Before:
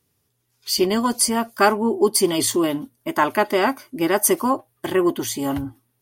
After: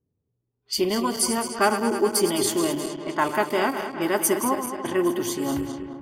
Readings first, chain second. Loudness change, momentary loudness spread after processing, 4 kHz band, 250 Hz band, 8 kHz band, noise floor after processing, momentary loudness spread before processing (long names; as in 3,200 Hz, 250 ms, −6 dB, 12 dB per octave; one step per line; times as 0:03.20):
−3.5 dB, 6 LU, −3.5 dB, −3.5 dB, −3.5 dB, −79 dBFS, 8 LU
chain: feedback delay that plays each chunk backwards 106 ms, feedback 79%, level −9 dB
low-pass that shuts in the quiet parts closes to 460 Hz, open at −18.5 dBFS
level −4.5 dB